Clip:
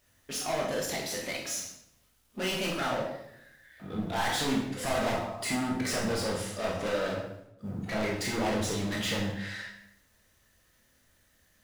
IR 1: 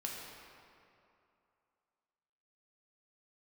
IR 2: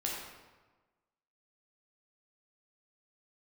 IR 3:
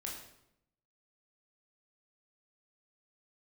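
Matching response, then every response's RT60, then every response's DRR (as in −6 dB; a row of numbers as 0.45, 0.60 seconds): 3; 2.7, 1.3, 0.80 seconds; −2.5, −3.5, −2.5 decibels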